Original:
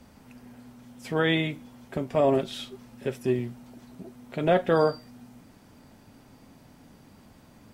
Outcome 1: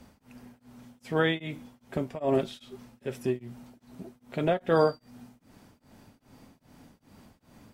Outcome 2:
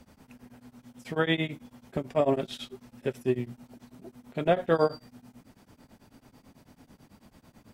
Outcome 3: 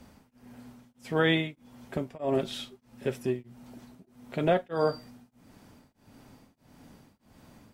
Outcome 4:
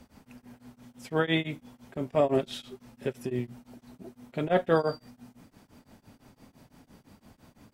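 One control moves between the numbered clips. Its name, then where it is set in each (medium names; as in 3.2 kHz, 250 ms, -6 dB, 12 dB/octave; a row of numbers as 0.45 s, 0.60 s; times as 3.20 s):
tremolo of two beating tones, nulls at: 2.5 Hz, 9.1 Hz, 1.6 Hz, 5.9 Hz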